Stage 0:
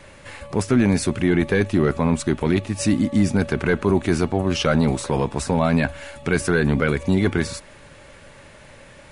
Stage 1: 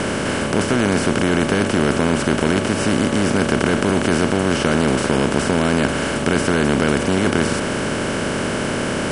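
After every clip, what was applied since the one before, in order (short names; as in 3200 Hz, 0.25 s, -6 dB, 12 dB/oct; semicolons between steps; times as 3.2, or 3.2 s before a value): per-bin compression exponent 0.2; gain -6 dB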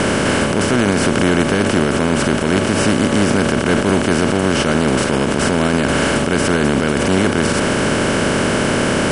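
limiter -10.5 dBFS, peak gain reduction 9 dB; gain +5.5 dB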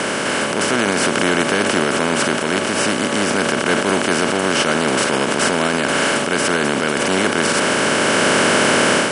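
HPF 140 Hz 12 dB/oct; low shelf 390 Hz -10 dB; AGC; gain -1 dB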